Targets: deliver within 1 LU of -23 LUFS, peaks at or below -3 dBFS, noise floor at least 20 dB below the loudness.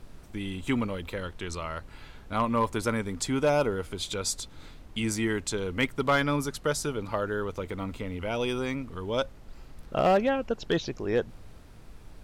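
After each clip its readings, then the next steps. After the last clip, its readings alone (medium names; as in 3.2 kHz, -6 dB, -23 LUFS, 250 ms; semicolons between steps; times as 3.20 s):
clipped samples 0.3%; clipping level -16.5 dBFS; noise floor -49 dBFS; noise floor target -50 dBFS; loudness -29.5 LUFS; peak level -16.5 dBFS; loudness target -23.0 LUFS
-> clip repair -16.5 dBFS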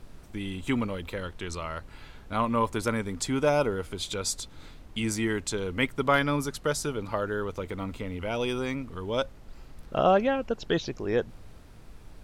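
clipped samples 0.0%; noise floor -49 dBFS; noise floor target -50 dBFS
-> noise print and reduce 6 dB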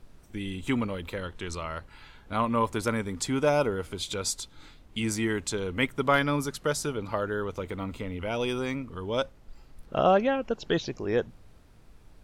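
noise floor -55 dBFS; loudness -29.5 LUFS; peak level -10.0 dBFS; loudness target -23.0 LUFS
-> trim +6.5 dB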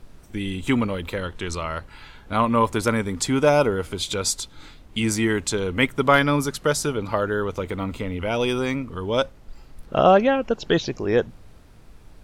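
loudness -23.0 LUFS; peak level -3.5 dBFS; noise floor -48 dBFS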